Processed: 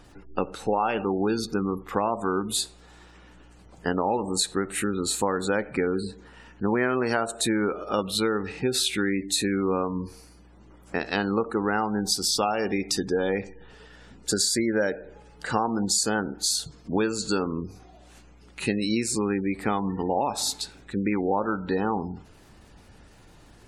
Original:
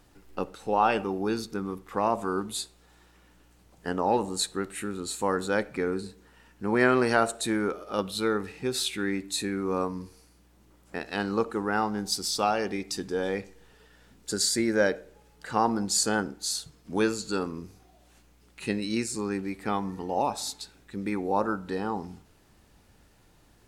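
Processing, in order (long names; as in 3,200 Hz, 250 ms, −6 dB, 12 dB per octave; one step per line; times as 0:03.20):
downward compressor 6 to 1, threshold −29 dBFS, peak gain reduction 12 dB
gate on every frequency bin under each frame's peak −30 dB strong
level +8 dB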